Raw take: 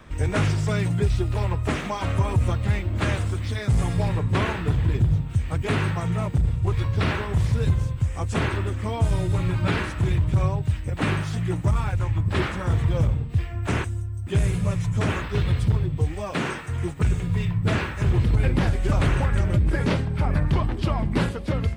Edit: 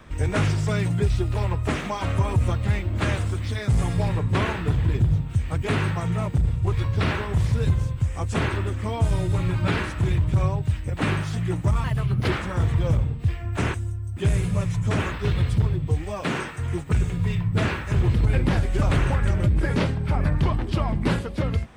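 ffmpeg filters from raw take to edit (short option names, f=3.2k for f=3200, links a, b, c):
-filter_complex "[0:a]asplit=3[a][b][c];[a]atrim=end=11.844[d];[b]atrim=start=11.84:end=12.38,asetpts=PTS-STARTPTS,asetrate=54243,aresample=44100[e];[c]atrim=start=12.376[f];[d][e]acrossfade=d=0.004:c1=hsin:c2=hsin[g];[g][f]acrossfade=d=0.004:c1=hsin:c2=hsin"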